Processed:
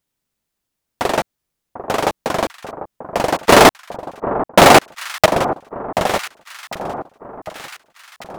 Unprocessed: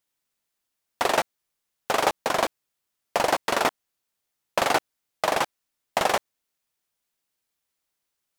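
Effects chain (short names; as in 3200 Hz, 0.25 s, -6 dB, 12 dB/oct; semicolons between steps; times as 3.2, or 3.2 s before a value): low shelf 370 Hz +12 dB; 3.49–5.26 sample leveller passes 5; on a send: echo with dull and thin repeats by turns 0.745 s, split 1300 Hz, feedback 65%, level -11.5 dB; on the sum: gain +1.5 dB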